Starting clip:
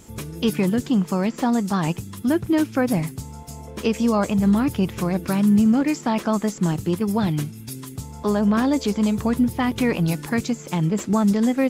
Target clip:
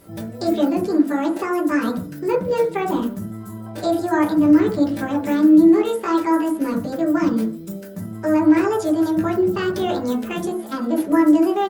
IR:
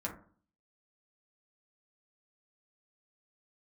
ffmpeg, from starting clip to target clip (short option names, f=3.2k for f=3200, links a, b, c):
-filter_complex "[0:a]asplit=2[a][b];[b]adelay=160,highpass=300,lowpass=3.4k,asoftclip=type=hard:threshold=-18dB,volume=-24dB[c];[a][c]amix=inputs=2:normalize=0,asetrate=66075,aresample=44100,atempo=0.66742[d];[1:a]atrim=start_sample=2205,afade=t=out:st=0.2:d=0.01,atrim=end_sample=9261[e];[d][e]afir=irnorm=-1:irlink=0,volume=-2dB"